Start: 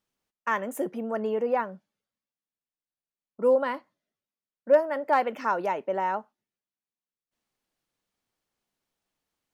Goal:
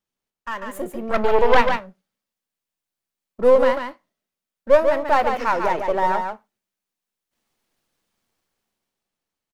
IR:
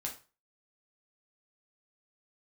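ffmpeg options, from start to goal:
-filter_complex "[0:a]aeval=exprs='if(lt(val(0),0),0.447*val(0),val(0))':channel_layout=same,asettb=1/sr,asplit=3[link_01][link_02][link_03];[link_01]atrim=end=1.094[link_04];[link_02]atrim=start=1.09:end=1.66,asetpts=PTS-STARTPTS,afade=type=in:duration=0.004:curve=qsin,afade=type=out:start_time=0.566:duration=0.004:curve=qsin,aeval=exprs='0.188*(cos(1*acos(clip(val(0)/0.188,-1,1)))-cos(1*PI/2))+0.0668*(cos(6*acos(clip(val(0)/0.188,-1,1)))-cos(6*PI/2))':channel_layout=same[link_05];[link_03]atrim=start=1.656[link_06];[link_04][link_05]acrossfade=duration=0.004:curve1=hsin:curve2=qsin[link_07];[link_07][link_06]acrossfade=duration=0.004:curve1=qsin:curve2=hsin,dynaudnorm=framelen=100:gausssize=21:maxgain=11dB,aecho=1:1:144:0.501,asplit=2[link_08][link_09];[1:a]atrim=start_sample=2205,asetrate=66150,aresample=44100[link_10];[link_09][link_10]afir=irnorm=-1:irlink=0,volume=-6.5dB[link_11];[link_08][link_11]amix=inputs=2:normalize=0,volume=-2.5dB"

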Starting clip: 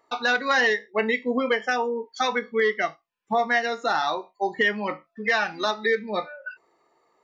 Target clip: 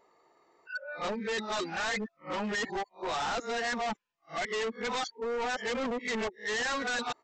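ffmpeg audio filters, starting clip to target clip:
ffmpeg -i in.wav -af "areverse,aresample=16000,volume=30.5dB,asoftclip=hard,volume=-30.5dB,aresample=44100" out.wav

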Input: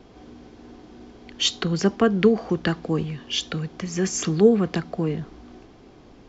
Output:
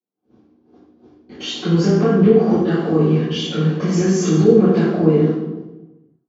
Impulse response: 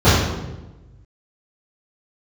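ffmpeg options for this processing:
-filter_complex "[0:a]highpass=frequency=210:width=0.5412,highpass=frequency=210:width=1.3066,agate=range=-54dB:threshold=-41dB:ratio=16:detection=peak,dynaudnorm=framelen=210:gausssize=9:maxgain=7.5dB,alimiter=limit=-23dB:level=0:latency=1:release=342[link_01];[1:a]atrim=start_sample=2205[link_02];[link_01][link_02]afir=irnorm=-1:irlink=0,volume=-15dB"

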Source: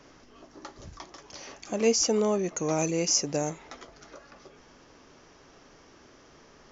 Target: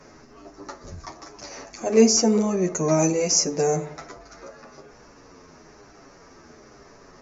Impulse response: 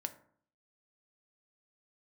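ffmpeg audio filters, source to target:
-filter_complex "[0:a]equalizer=frequency=3200:width_type=o:width=0.41:gain=-13.5,atempo=0.93,asplit=2[link_01][link_02];[1:a]atrim=start_sample=2205,asetrate=32193,aresample=44100[link_03];[link_02][link_03]afir=irnorm=-1:irlink=0,volume=5.5dB[link_04];[link_01][link_04]amix=inputs=2:normalize=0,asplit=2[link_05][link_06];[link_06]adelay=8.9,afreqshift=-1.1[link_07];[link_05][link_07]amix=inputs=2:normalize=1"

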